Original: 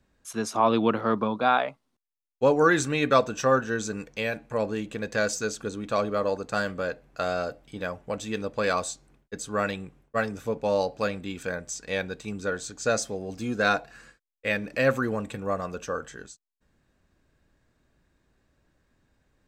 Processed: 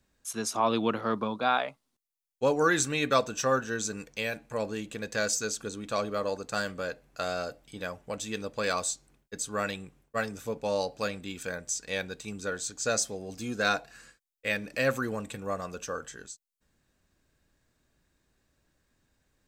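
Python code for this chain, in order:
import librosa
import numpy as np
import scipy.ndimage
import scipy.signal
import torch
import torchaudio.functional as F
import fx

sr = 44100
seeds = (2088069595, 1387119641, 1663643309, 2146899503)

y = fx.high_shelf(x, sr, hz=3600.0, db=10.5)
y = y * 10.0 ** (-5.0 / 20.0)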